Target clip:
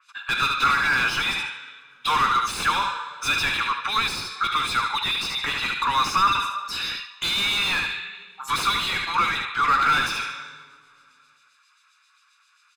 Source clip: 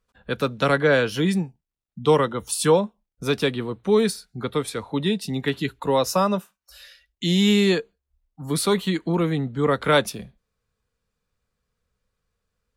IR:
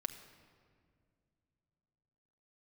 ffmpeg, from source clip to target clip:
-filter_complex "[0:a]highpass=f=1.2k:w=0.5412,highpass=f=1.2k:w=1.3066,highshelf=f=2.4k:g=9.5,asoftclip=type=tanh:threshold=-15.5dB,acrossover=split=2400[a][b];[a]aeval=exprs='val(0)*(1-0.7/2+0.7/2*cos(2*PI*7.5*n/s))':c=same[c];[b]aeval=exprs='val(0)*(1-0.7/2-0.7/2*cos(2*PI*7.5*n/s))':c=same[d];[c][d]amix=inputs=2:normalize=0,asplit=2[e][f];[1:a]atrim=start_sample=2205,asetrate=66150,aresample=44100[g];[f][g]afir=irnorm=-1:irlink=0,volume=5.5dB[h];[e][h]amix=inputs=2:normalize=0,aeval=exprs='0.141*(abs(mod(val(0)/0.141+3,4)-2)-1)':c=same,lowpass=8.7k,aecho=1:1:74|148|222:0.266|0.0639|0.0153,asplit=2[i][j];[j]highpass=f=720:p=1,volume=26dB,asoftclip=type=tanh:threshold=-14.5dB[k];[i][k]amix=inputs=2:normalize=0,lowpass=f=1.6k:p=1,volume=-6dB,aecho=1:1:0.8:0.6,adynamicequalizer=threshold=0.0126:dfrequency=4300:dqfactor=0.7:tfrequency=4300:tqfactor=0.7:attack=5:release=100:ratio=0.375:range=2.5:mode=cutabove:tftype=highshelf,volume=1dB"

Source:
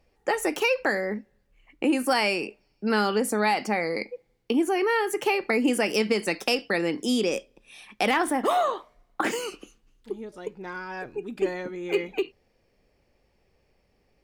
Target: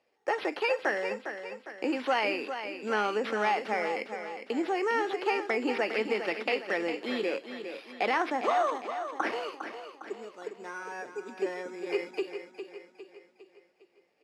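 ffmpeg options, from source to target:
-filter_complex "[0:a]acrusher=samples=6:mix=1:aa=0.000001,acrossover=split=3500[a][b];[b]acompressor=threshold=-45dB:ratio=4:attack=1:release=60[c];[a][c]amix=inputs=2:normalize=0,highpass=370,lowpass=5.9k,asplit=2[d][e];[e]aecho=0:1:406|812|1218|1624|2030:0.355|0.17|0.0817|0.0392|0.0188[f];[d][f]amix=inputs=2:normalize=0,volume=-3dB"

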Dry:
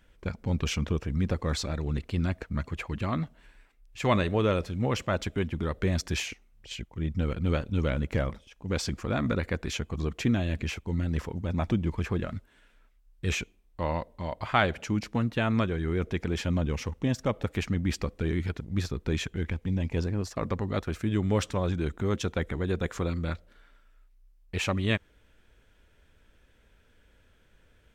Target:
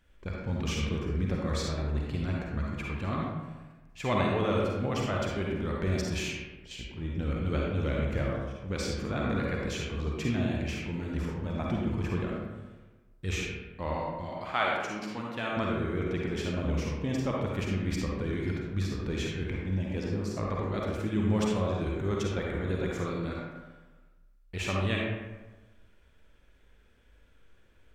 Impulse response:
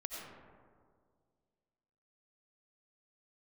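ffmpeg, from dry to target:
-filter_complex "[0:a]asettb=1/sr,asplit=3[a][b][c];[a]atrim=end=14.254[d];[b]atrim=start=14.25:end=15.57,asetpts=PTS-STARTPTS,afade=t=in:d=0.004:c=qsin,afade=t=out:st=1.316:d=0.004:c=qsin,highpass=f=500:p=1[e];[c]atrim=start=15.566[f];[d][e]acrossfade=d=0.004:c1=hsin:c2=qsin[g];[g][f]acrossfade=d=0.004:c1=qsin:c2=hsin[h];[1:a]atrim=start_sample=2205,asetrate=79380,aresample=44100[i];[h][i]afir=irnorm=-1:irlink=0,volume=4dB"

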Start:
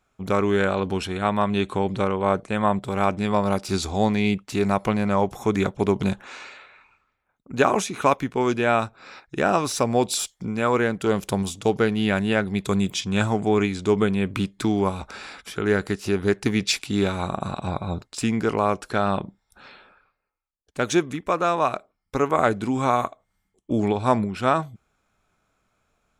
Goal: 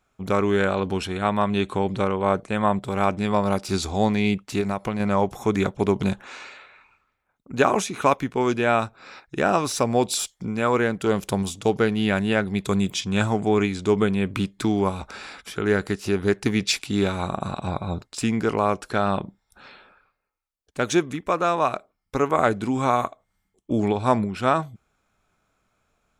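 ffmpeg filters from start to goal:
-filter_complex "[0:a]asettb=1/sr,asplit=3[a][b][c];[a]atrim=end=4.604[d];[b]atrim=start=4.6:end=5,asetpts=PTS-STARTPTS,afade=t=in:d=0.004:c=qsin,afade=t=out:st=0.396:d=0.004:c=qsin,acompressor=threshold=-22dB:ratio=6[e];[c]atrim=start=4.996[f];[d][e]acrossfade=d=0.004:c1=hsin:c2=qsin[g];[g][f]acrossfade=d=0.004:c1=qsin:c2=hsin"

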